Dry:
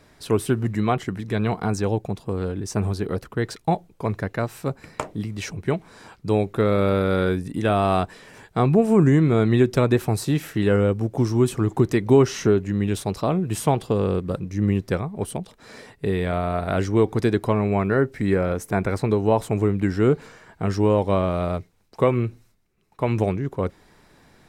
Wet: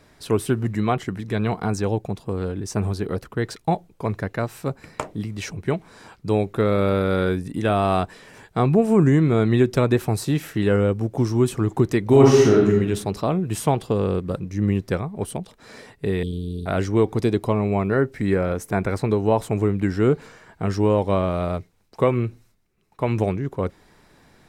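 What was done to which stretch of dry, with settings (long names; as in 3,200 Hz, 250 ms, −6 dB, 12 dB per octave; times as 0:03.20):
0:12.07–0:12.71: thrown reverb, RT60 0.97 s, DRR −3 dB
0:16.23–0:16.66: Chebyshev band-stop filter 430–3,100 Hz, order 5
0:17.16–0:17.93: parametric band 1,600 Hz −7.5 dB 0.53 octaves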